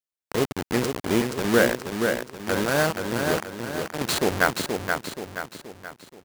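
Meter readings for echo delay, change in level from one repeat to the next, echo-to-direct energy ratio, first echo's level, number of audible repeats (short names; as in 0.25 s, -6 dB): 0.477 s, -6.5 dB, -4.0 dB, -5.0 dB, 5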